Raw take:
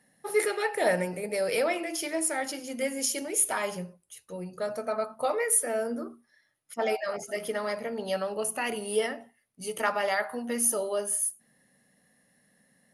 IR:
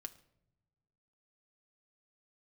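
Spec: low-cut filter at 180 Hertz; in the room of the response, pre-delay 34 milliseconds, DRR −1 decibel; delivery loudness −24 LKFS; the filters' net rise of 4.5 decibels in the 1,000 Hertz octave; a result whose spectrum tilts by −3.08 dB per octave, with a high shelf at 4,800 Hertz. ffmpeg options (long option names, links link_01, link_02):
-filter_complex "[0:a]highpass=180,equalizer=frequency=1000:width_type=o:gain=6.5,highshelf=frequency=4800:gain=-7.5,asplit=2[link_01][link_02];[1:a]atrim=start_sample=2205,adelay=34[link_03];[link_02][link_03]afir=irnorm=-1:irlink=0,volume=5.5dB[link_04];[link_01][link_04]amix=inputs=2:normalize=0,volume=1.5dB"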